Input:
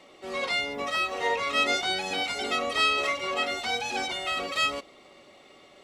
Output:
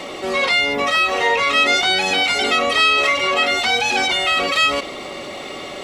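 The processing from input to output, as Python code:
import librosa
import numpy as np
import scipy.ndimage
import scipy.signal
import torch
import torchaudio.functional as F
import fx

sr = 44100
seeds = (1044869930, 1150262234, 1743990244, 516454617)

y = fx.dynamic_eq(x, sr, hz=2400.0, q=0.73, threshold_db=-39.0, ratio=4.0, max_db=4)
y = fx.env_flatten(y, sr, amount_pct=50)
y = y * 10.0 ** (5.0 / 20.0)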